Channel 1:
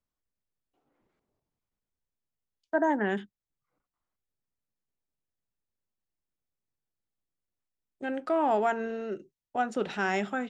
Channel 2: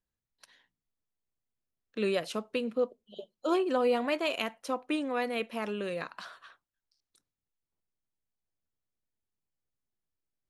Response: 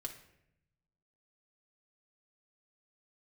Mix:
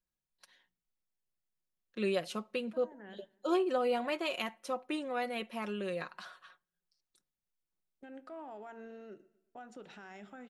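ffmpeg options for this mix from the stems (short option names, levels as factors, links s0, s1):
-filter_complex "[0:a]agate=range=0.0224:threshold=0.00891:ratio=3:detection=peak,alimiter=level_in=1.26:limit=0.0631:level=0:latency=1:release=95,volume=0.794,volume=0.168,asplit=3[s0][s1][s2];[s1]volume=0.316[s3];[s2]volume=0.106[s4];[1:a]aecho=1:1:5.5:0.5,volume=0.562,asplit=3[s5][s6][s7];[s6]volume=0.0944[s8];[s7]apad=whole_len=462727[s9];[s0][s9]sidechaincompress=threshold=0.00282:ratio=8:attack=16:release=135[s10];[2:a]atrim=start_sample=2205[s11];[s3][s8]amix=inputs=2:normalize=0[s12];[s12][s11]afir=irnorm=-1:irlink=0[s13];[s4]aecho=0:1:121|242|363|484|605|726:1|0.41|0.168|0.0689|0.0283|0.0116[s14];[s10][s5][s13][s14]amix=inputs=4:normalize=0"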